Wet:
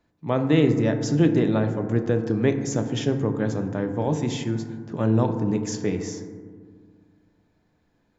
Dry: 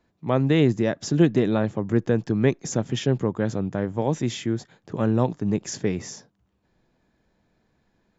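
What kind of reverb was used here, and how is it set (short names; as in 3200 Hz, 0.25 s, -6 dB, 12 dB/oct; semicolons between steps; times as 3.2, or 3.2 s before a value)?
FDN reverb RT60 1.8 s, low-frequency decay 1.4×, high-frequency decay 0.3×, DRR 6 dB; gain -1.5 dB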